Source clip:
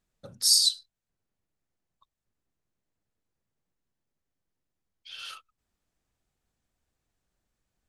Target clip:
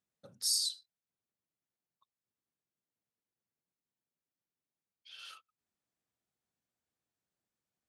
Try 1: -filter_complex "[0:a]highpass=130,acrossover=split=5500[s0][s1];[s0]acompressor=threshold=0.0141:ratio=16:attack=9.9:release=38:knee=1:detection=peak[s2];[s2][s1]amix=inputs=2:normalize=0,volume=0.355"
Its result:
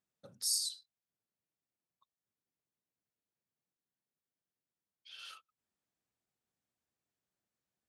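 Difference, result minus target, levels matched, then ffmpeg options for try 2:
compression: peak gain reduction +8.5 dB
-filter_complex "[0:a]highpass=130,acrossover=split=5500[s0][s1];[s0]acompressor=threshold=0.0398:ratio=16:attack=9.9:release=38:knee=1:detection=peak[s2];[s2][s1]amix=inputs=2:normalize=0,volume=0.355"

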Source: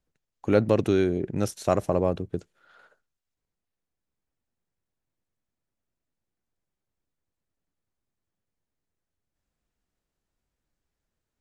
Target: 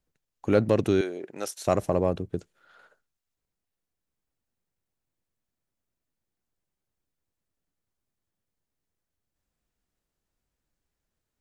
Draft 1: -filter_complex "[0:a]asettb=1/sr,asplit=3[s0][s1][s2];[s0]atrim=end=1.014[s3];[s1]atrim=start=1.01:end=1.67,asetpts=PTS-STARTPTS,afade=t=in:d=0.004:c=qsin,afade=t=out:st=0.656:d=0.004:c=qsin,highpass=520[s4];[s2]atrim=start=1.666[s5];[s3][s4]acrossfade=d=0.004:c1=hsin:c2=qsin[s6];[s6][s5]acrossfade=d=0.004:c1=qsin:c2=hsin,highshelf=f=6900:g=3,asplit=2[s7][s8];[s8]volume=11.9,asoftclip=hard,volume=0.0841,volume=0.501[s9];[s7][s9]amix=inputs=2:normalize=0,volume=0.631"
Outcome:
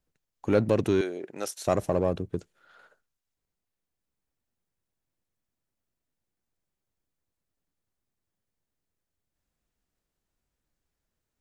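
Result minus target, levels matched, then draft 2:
overload inside the chain: distortion +12 dB
-filter_complex "[0:a]asettb=1/sr,asplit=3[s0][s1][s2];[s0]atrim=end=1.014[s3];[s1]atrim=start=1.01:end=1.67,asetpts=PTS-STARTPTS,afade=t=in:d=0.004:c=qsin,afade=t=out:st=0.656:d=0.004:c=qsin,highpass=520[s4];[s2]atrim=start=1.666[s5];[s3][s4]acrossfade=d=0.004:c1=hsin:c2=qsin[s6];[s6][s5]acrossfade=d=0.004:c1=qsin:c2=hsin,highshelf=f=6900:g=3,asplit=2[s7][s8];[s8]volume=3.98,asoftclip=hard,volume=0.251,volume=0.501[s9];[s7][s9]amix=inputs=2:normalize=0,volume=0.631"

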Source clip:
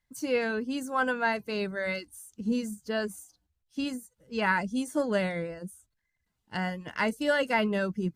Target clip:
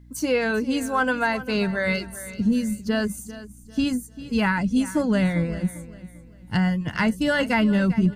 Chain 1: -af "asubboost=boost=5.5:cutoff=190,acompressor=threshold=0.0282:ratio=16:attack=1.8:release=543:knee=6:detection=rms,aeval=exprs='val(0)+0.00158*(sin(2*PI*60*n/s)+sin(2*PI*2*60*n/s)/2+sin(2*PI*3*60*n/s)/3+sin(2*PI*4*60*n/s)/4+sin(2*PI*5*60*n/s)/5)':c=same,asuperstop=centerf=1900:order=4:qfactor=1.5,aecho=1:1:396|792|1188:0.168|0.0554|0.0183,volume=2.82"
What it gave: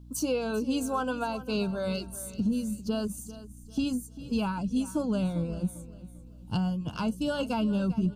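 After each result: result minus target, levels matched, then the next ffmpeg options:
2 kHz band -8.5 dB; compression: peak gain reduction +7.5 dB
-af "asubboost=boost=5.5:cutoff=190,acompressor=threshold=0.0282:ratio=16:attack=1.8:release=543:knee=6:detection=rms,aeval=exprs='val(0)+0.00158*(sin(2*PI*60*n/s)+sin(2*PI*2*60*n/s)/2+sin(2*PI*3*60*n/s)/3+sin(2*PI*4*60*n/s)/4+sin(2*PI*5*60*n/s)/5)':c=same,aecho=1:1:396|792|1188:0.168|0.0554|0.0183,volume=2.82"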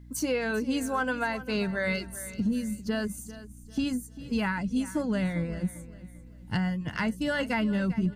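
compression: peak gain reduction +7.5 dB
-af "asubboost=boost=5.5:cutoff=190,acompressor=threshold=0.0708:ratio=16:attack=1.8:release=543:knee=6:detection=rms,aeval=exprs='val(0)+0.00158*(sin(2*PI*60*n/s)+sin(2*PI*2*60*n/s)/2+sin(2*PI*3*60*n/s)/3+sin(2*PI*4*60*n/s)/4+sin(2*PI*5*60*n/s)/5)':c=same,aecho=1:1:396|792|1188:0.168|0.0554|0.0183,volume=2.82"

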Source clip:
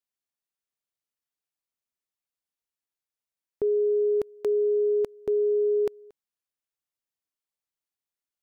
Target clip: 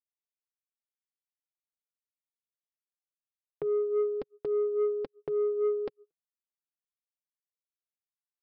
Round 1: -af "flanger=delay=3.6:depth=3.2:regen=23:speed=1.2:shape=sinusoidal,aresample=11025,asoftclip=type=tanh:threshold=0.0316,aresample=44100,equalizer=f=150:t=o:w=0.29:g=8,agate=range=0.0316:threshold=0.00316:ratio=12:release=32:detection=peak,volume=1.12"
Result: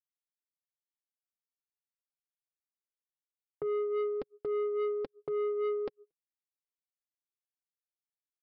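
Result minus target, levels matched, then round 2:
saturation: distortion +8 dB
-af "flanger=delay=3.6:depth=3.2:regen=23:speed=1.2:shape=sinusoidal,aresample=11025,asoftclip=type=tanh:threshold=0.0708,aresample=44100,equalizer=f=150:t=o:w=0.29:g=8,agate=range=0.0316:threshold=0.00316:ratio=12:release=32:detection=peak,volume=1.12"

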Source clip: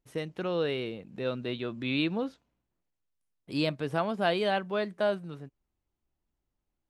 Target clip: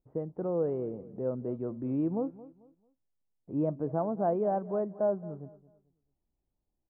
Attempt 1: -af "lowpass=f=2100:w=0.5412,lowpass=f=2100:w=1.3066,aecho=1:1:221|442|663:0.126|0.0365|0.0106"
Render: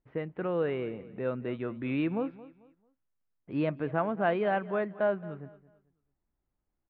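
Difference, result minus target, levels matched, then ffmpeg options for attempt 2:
2 kHz band +19.5 dB
-af "lowpass=f=880:w=0.5412,lowpass=f=880:w=1.3066,aecho=1:1:221|442|663:0.126|0.0365|0.0106"

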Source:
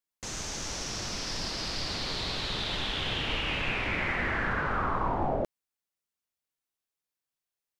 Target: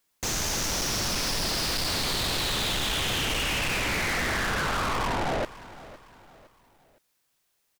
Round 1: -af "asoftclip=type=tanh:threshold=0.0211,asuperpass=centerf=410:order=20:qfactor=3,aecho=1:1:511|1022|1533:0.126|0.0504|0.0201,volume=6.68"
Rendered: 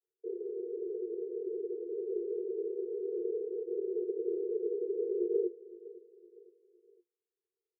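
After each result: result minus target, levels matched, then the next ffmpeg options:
500 Hz band +12.5 dB; saturation: distortion -4 dB
-af "asoftclip=type=tanh:threshold=0.0211,aecho=1:1:511|1022|1533:0.126|0.0504|0.0201,volume=6.68"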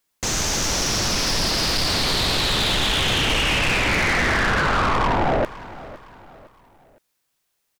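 saturation: distortion -4 dB
-af "asoftclip=type=tanh:threshold=0.00708,aecho=1:1:511|1022|1533:0.126|0.0504|0.0201,volume=6.68"

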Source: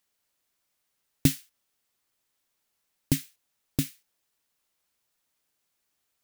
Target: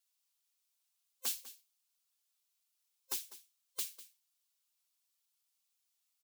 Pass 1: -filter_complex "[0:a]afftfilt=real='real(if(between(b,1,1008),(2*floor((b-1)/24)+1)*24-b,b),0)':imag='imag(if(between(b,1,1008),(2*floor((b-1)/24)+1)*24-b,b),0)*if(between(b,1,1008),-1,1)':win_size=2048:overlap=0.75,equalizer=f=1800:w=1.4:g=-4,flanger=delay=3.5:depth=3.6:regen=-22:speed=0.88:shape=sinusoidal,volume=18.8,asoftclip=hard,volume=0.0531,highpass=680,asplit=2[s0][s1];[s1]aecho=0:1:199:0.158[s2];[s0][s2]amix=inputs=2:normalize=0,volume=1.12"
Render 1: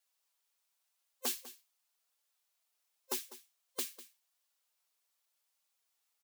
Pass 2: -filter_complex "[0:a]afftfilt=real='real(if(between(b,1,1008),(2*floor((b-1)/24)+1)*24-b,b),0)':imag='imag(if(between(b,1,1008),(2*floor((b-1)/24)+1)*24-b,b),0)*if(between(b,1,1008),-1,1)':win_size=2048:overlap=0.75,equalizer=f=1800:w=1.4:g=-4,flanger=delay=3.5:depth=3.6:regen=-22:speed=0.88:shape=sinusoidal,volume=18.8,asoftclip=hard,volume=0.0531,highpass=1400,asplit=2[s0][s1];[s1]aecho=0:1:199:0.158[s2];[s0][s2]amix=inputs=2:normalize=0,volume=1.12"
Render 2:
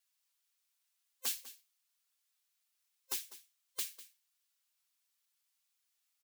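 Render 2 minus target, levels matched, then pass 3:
2 kHz band +2.5 dB
-filter_complex "[0:a]afftfilt=real='real(if(between(b,1,1008),(2*floor((b-1)/24)+1)*24-b,b),0)':imag='imag(if(between(b,1,1008),(2*floor((b-1)/24)+1)*24-b,b),0)*if(between(b,1,1008),-1,1)':win_size=2048:overlap=0.75,equalizer=f=1800:w=1.4:g=-10.5,flanger=delay=3.5:depth=3.6:regen=-22:speed=0.88:shape=sinusoidal,volume=18.8,asoftclip=hard,volume=0.0531,highpass=1400,asplit=2[s0][s1];[s1]aecho=0:1:199:0.158[s2];[s0][s2]amix=inputs=2:normalize=0,volume=1.12"

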